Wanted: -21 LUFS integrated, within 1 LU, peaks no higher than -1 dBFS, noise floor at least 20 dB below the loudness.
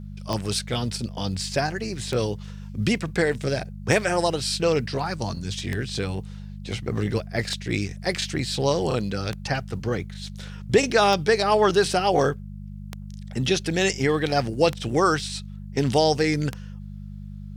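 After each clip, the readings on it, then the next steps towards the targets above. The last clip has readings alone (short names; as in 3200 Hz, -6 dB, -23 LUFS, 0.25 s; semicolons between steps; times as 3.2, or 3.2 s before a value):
clicks 10; hum 50 Hz; harmonics up to 200 Hz; hum level -34 dBFS; loudness -24.5 LUFS; peak -5.5 dBFS; loudness target -21.0 LUFS
-> de-click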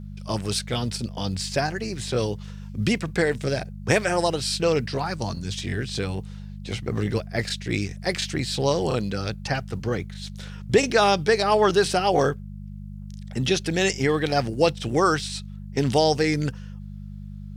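clicks 0; hum 50 Hz; harmonics up to 200 Hz; hum level -34 dBFS
-> de-hum 50 Hz, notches 4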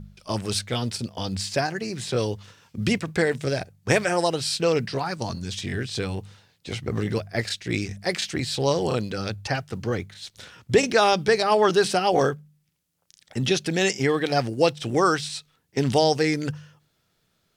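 hum none; loudness -24.5 LUFS; peak -5.5 dBFS; loudness target -21.0 LUFS
-> gain +3.5 dB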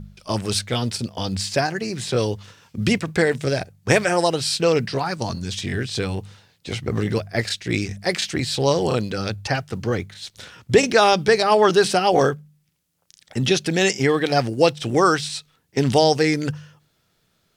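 loudness -21.0 LUFS; peak -2.0 dBFS; noise floor -67 dBFS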